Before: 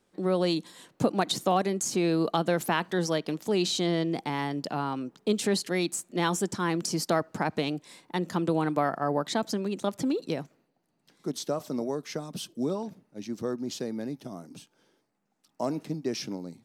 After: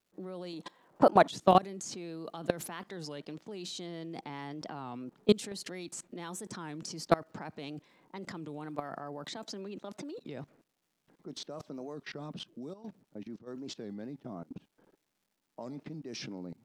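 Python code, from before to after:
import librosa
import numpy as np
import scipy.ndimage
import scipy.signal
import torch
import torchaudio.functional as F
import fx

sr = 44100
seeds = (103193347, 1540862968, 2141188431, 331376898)

y = fx.highpass(x, sr, hz=210.0, slope=12, at=(9.36, 10.2))
y = fx.env_lowpass(y, sr, base_hz=1100.0, full_db=-23.0)
y = fx.peak_eq(y, sr, hz=830.0, db=11.0, octaves=2.0, at=(0.53, 1.29))
y = fx.level_steps(y, sr, step_db=23)
y = fx.dmg_crackle(y, sr, seeds[0], per_s=530.0, level_db=-71.0)
y = fx.step_gate(y, sr, bpm=139, pattern='xxxx.x.x', floor_db=-12.0, edge_ms=4.5, at=(12.72, 13.46), fade=0.02)
y = fx.record_warp(y, sr, rpm=33.33, depth_cents=160.0)
y = y * 10.0 ** (4.5 / 20.0)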